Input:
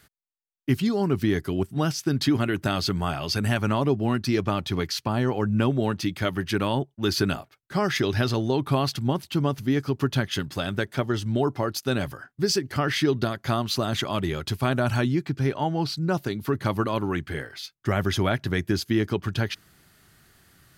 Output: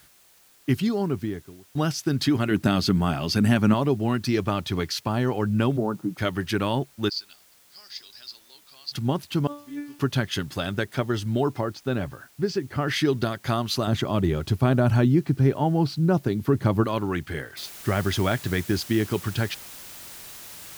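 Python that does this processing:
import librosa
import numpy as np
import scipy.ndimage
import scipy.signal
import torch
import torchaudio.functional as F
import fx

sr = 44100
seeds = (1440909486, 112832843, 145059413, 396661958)

y = fx.studio_fade_out(x, sr, start_s=0.78, length_s=0.97)
y = fx.peak_eq(y, sr, hz=220.0, db=9.0, octaves=1.1, at=(2.51, 3.74))
y = fx.cheby1_bandpass(y, sr, low_hz=120.0, high_hz=1400.0, order=5, at=(5.76, 6.17), fade=0.02)
y = fx.bandpass_q(y, sr, hz=4700.0, q=7.2, at=(7.08, 8.91), fade=0.02)
y = fx.comb_fb(y, sr, f0_hz=290.0, decay_s=0.43, harmonics='all', damping=0.0, mix_pct=100, at=(9.47, 9.99))
y = fx.spacing_loss(y, sr, db_at_10k=23, at=(11.61, 12.88))
y = fx.tilt_shelf(y, sr, db=5.5, hz=900.0, at=(13.87, 16.84))
y = fx.noise_floor_step(y, sr, seeds[0], at_s=17.57, before_db=-57, after_db=-42, tilt_db=0.0)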